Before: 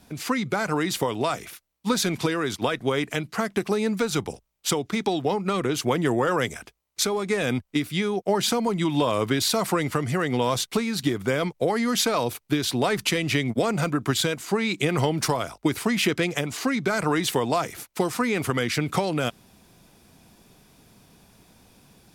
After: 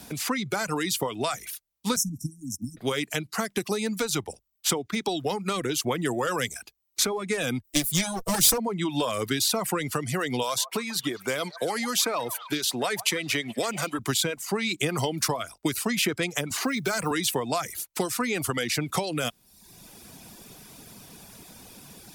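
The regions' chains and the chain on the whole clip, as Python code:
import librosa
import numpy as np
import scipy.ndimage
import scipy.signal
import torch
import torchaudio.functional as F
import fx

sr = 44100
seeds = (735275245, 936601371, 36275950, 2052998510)

y = fx.chain(x, sr, fx.brickwall_bandstop(low_hz=300.0, high_hz=5200.0),
    fx.band_widen(depth_pct=40), at=(1.96, 2.77))
y = fx.chain(y, sr, fx.lower_of_two(delay_ms=6.1),
    fx.bass_treble(bass_db=7, treble_db=14), at=(7.64, 8.58))
y = fx.chain(y, sr, fx.highpass(hz=330.0, slope=6),
    fx.echo_stepped(ms=141, hz=870.0, octaves=0.7, feedback_pct=70, wet_db=-9), at=(10.43, 13.99))
y = fx.chain(y, sr, fx.block_float(bits=7),
    fx.band_squash(depth_pct=40), at=(16.5, 17.11))
y = fx.dereverb_blind(y, sr, rt60_s=0.68)
y = fx.high_shelf(y, sr, hz=4400.0, db=9.5)
y = fx.band_squash(y, sr, depth_pct=40)
y = y * librosa.db_to_amplitude(-3.5)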